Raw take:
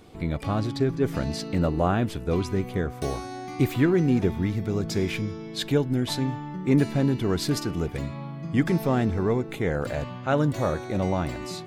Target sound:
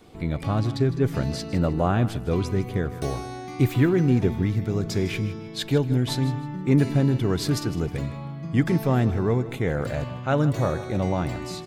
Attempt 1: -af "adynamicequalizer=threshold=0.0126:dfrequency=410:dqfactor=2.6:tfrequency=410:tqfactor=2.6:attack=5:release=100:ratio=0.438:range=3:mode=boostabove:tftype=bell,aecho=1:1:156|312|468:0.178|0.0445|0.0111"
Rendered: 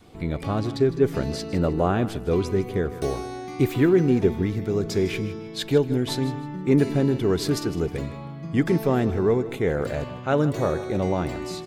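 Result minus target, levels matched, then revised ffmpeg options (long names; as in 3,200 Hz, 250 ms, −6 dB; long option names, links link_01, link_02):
125 Hz band −4.0 dB
-af "adynamicequalizer=threshold=0.0126:dfrequency=120:dqfactor=2.6:tfrequency=120:tqfactor=2.6:attack=5:release=100:ratio=0.438:range=3:mode=boostabove:tftype=bell,aecho=1:1:156|312|468:0.178|0.0445|0.0111"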